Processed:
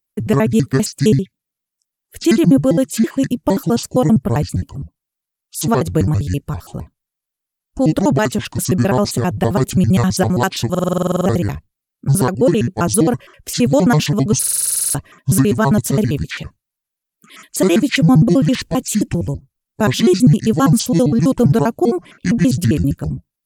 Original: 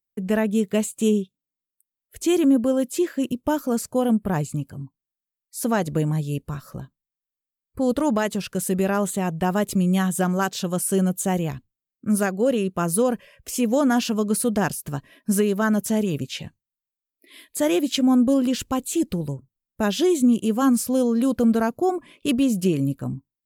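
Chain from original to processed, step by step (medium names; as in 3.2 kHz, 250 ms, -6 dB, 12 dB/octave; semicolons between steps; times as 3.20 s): pitch shift switched off and on -8 st, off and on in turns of 66 ms; buffer glitch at 10.70/14.39 s, samples 2048, times 11; trim +7.5 dB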